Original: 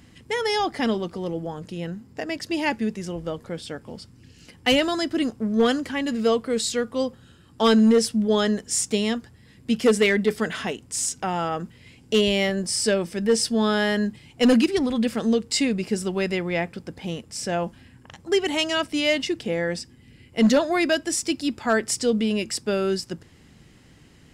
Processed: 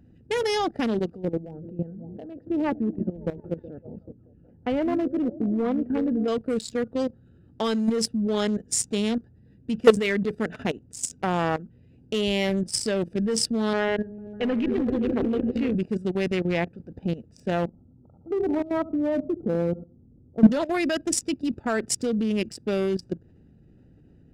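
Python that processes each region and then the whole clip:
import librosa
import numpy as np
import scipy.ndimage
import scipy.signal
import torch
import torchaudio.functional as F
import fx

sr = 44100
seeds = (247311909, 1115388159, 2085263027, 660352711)

y = fx.chain(x, sr, fx.lowpass(hz=1200.0, slope=12),
    fx.echo_stepped(ms=185, hz=220.0, octaves=0.7, feedback_pct=70, wet_db=-9), at=(1.25, 6.28))
y = fx.chain(y, sr, fx.lowpass(hz=2800.0, slope=24),
    fx.peak_eq(hz=190.0, db=-8.0, octaves=0.66),
    fx.echo_opening(ms=150, hz=200, octaves=1, feedback_pct=70, wet_db=-3), at=(13.73, 15.75))
y = fx.chain(y, sr, fx.brickwall_lowpass(high_hz=1400.0),
    fx.echo_feedback(ms=71, feedback_pct=32, wet_db=-11.0), at=(17.66, 20.52))
y = fx.wiener(y, sr, points=41)
y = fx.level_steps(y, sr, step_db=15)
y = y * librosa.db_to_amplitude(6.0)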